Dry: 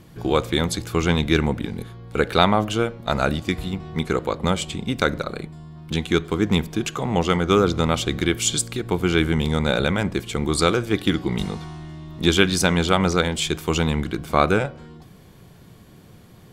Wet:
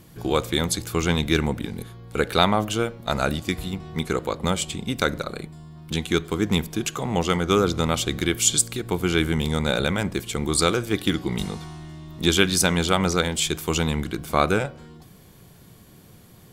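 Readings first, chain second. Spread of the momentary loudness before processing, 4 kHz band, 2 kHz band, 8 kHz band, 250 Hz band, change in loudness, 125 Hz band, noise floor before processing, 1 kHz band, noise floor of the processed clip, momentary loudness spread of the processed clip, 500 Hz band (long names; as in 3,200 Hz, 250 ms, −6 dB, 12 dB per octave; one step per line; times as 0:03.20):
10 LU, 0.0 dB, −1.5 dB, +3.5 dB, −2.5 dB, −1.5 dB, −2.5 dB, −47 dBFS, −2.0 dB, −49 dBFS, 11 LU, −2.5 dB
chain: high-shelf EQ 6,500 Hz +10.5 dB
level −2.5 dB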